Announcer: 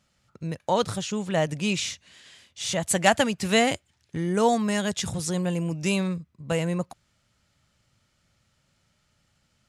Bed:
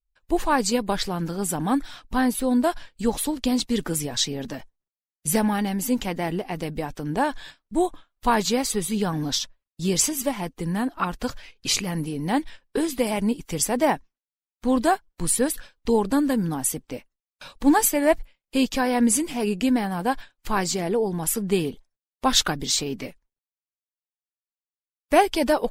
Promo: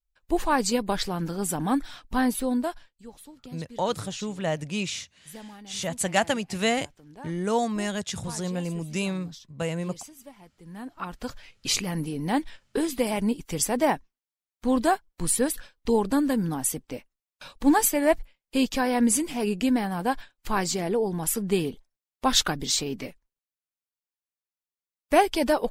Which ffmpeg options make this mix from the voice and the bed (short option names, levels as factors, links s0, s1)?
-filter_complex "[0:a]adelay=3100,volume=0.668[s0];[1:a]volume=7.5,afade=t=out:st=2.35:d=0.61:silence=0.105925,afade=t=in:st=10.6:d=1.17:silence=0.105925[s1];[s0][s1]amix=inputs=2:normalize=0"